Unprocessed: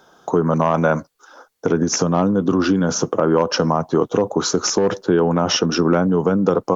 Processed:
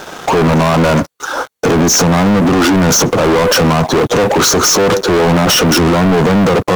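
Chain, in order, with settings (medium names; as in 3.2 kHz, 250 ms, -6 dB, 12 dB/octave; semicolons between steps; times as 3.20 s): high-pass 56 Hz 12 dB/octave; band-stop 5 kHz; peak limiter -15.5 dBFS, peak gain reduction 10.5 dB; waveshaping leveller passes 5; trim +7.5 dB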